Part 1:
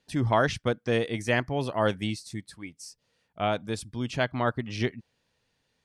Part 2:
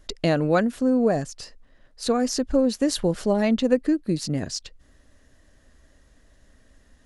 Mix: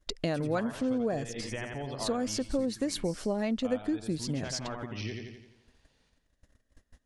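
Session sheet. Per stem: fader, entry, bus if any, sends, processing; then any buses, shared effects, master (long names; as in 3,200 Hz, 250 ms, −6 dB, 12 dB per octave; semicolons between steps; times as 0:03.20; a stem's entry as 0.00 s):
+2.0 dB, 0.25 s, no send, echo send −5 dB, gate on every frequency bin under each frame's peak −30 dB strong; downward compressor 4 to 1, threshold −35 dBFS, peak gain reduction 14.5 dB
+0.5 dB, 0.00 s, no send, no echo send, noise gate −51 dBFS, range −22 dB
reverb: not used
echo: repeating echo 86 ms, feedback 50%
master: downward compressor 2 to 1, threshold −35 dBFS, peak gain reduction 12 dB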